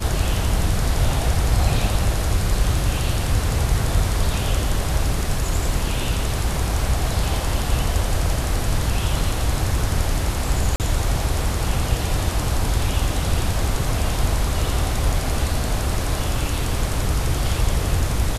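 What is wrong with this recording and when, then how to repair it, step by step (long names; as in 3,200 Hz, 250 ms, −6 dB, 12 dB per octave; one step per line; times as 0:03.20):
0:10.76–0:10.80: drop-out 38 ms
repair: repair the gap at 0:10.76, 38 ms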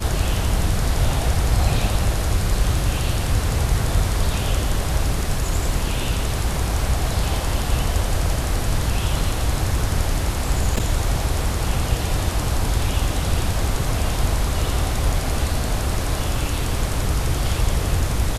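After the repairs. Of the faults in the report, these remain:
none of them is left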